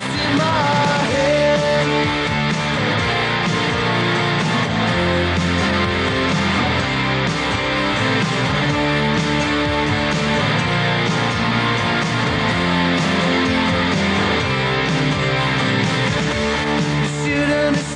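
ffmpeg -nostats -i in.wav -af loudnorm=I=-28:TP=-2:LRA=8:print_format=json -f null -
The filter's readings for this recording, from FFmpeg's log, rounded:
"input_i" : "-17.5",
"input_tp" : "-5.2",
"input_lra" : "0.8",
"input_thresh" : "-27.5",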